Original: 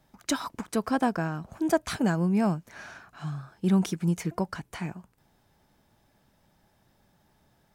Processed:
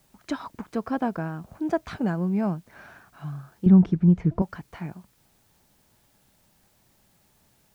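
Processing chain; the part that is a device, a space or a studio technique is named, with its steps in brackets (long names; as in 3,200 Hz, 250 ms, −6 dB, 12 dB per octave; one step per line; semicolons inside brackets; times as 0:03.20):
cassette deck with a dirty head (head-to-tape spacing loss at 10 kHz 23 dB; tape wow and flutter; white noise bed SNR 35 dB)
0:03.66–0:04.42: RIAA equalisation playback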